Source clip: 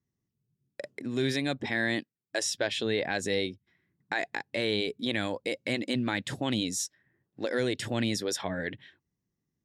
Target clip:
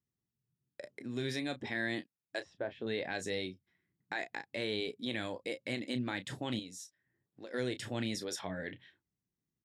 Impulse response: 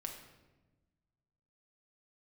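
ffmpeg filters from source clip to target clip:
-filter_complex "[0:a]asettb=1/sr,asplit=3[a][b][c];[a]atrim=end=2.404[d];[b]atrim=start=2.4:end=2.87,asetpts=PTS-STARTPTS,afade=t=in:d=0.004:c=qsin,afade=t=out:st=0.466:d=0.004:c=qsin,lowpass=1.2k[e];[c]atrim=start=2.866[f];[d][e]acrossfade=d=0.004:c1=hsin:c2=qsin[g];[g][f]acrossfade=d=0.004:c1=qsin:c2=hsin,asettb=1/sr,asplit=3[h][i][j];[h]atrim=end=6.594[k];[i]atrim=start=6.59:end=7.54,asetpts=PTS-STARTPTS,afade=t=in:d=0.004:c=qsin,afade=t=out:st=0.946:d=0.004:c=qsin,acompressor=threshold=-53dB:ratio=1.5[l];[j]atrim=start=7.536[m];[k][l]acrossfade=d=0.004:c1=hsin:c2=qsin[n];[n][m]acrossfade=d=0.004:c1=qsin:c2=hsin,aecho=1:1:17|32:0.15|0.266,volume=-7.5dB"

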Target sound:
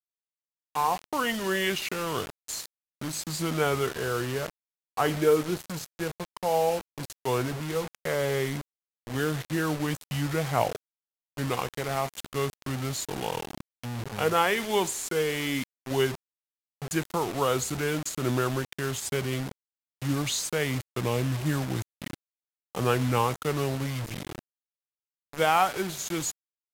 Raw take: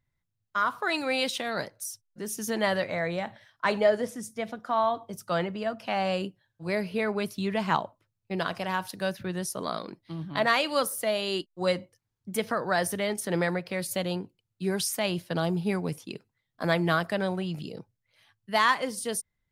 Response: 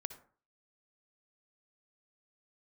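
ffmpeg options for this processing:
-af "acrusher=bits=5:mix=0:aa=0.000001,asetrate=32193,aresample=44100"

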